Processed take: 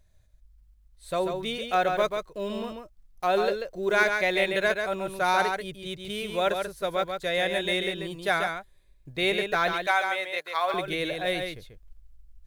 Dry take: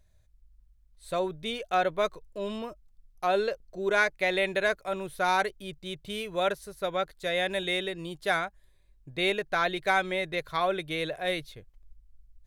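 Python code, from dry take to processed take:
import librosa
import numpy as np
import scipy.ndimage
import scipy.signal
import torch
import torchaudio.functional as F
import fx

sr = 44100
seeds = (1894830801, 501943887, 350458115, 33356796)

y = fx.block_float(x, sr, bits=7)
y = fx.cheby1_highpass(y, sr, hz=730.0, order=2, at=(9.73, 10.74))
y = y + 10.0 ** (-5.5 / 20.0) * np.pad(y, (int(139 * sr / 1000.0), 0))[:len(y)]
y = y * librosa.db_to_amplitude(1.5)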